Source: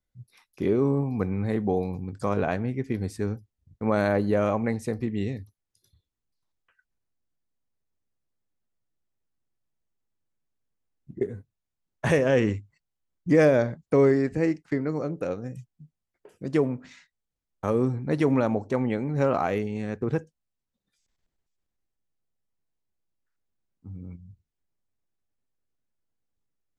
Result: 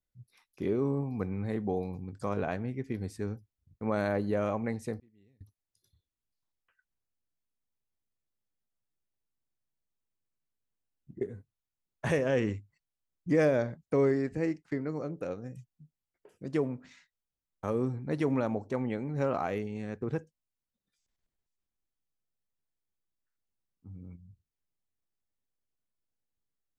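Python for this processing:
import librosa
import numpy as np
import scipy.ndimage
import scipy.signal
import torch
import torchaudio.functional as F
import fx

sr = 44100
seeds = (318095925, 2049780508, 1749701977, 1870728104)

y = fx.gate_flip(x, sr, shuts_db=-36.0, range_db=-29, at=(4.99, 5.41))
y = F.gain(torch.from_numpy(y), -6.5).numpy()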